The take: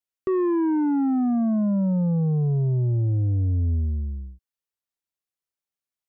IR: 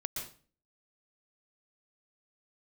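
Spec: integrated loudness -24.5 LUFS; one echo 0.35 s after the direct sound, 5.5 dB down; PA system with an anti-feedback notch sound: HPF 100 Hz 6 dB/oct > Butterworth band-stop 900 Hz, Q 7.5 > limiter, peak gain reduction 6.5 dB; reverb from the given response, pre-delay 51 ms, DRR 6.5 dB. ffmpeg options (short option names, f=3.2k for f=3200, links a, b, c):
-filter_complex "[0:a]aecho=1:1:350:0.531,asplit=2[a][b];[1:a]atrim=start_sample=2205,adelay=51[c];[b][c]afir=irnorm=-1:irlink=0,volume=-7.5dB[d];[a][d]amix=inputs=2:normalize=0,highpass=f=100:p=1,asuperstop=centerf=900:order=8:qfactor=7.5,alimiter=limit=-17dB:level=0:latency=1"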